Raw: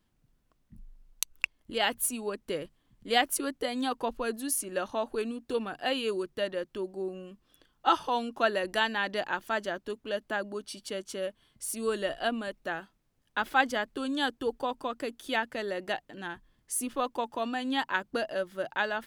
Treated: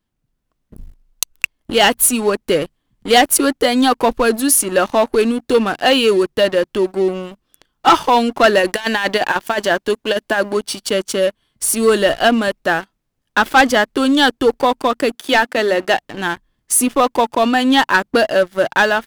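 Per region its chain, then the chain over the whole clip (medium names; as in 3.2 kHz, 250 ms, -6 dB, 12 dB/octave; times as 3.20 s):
8.59–10.57 s: bass shelf 330 Hz -6 dB + band-stop 1.3 kHz, Q 11 + compressor with a negative ratio -33 dBFS, ratio -0.5
15.15–15.97 s: high-pass 190 Hz + treble shelf 8.1 kHz -2.5 dB + hum notches 50/100/150/200/250/300 Hz
whole clip: waveshaping leveller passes 3; level rider gain up to 3.5 dB; trim +3.5 dB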